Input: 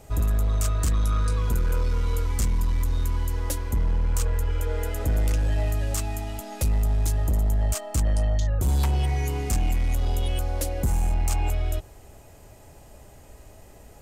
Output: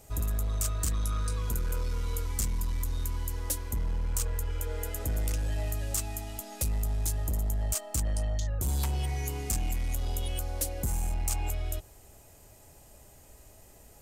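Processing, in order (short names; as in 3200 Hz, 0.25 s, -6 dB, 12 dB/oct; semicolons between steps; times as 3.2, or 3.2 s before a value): high shelf 4800 Hz +10.5 dB; gain -7.5 dB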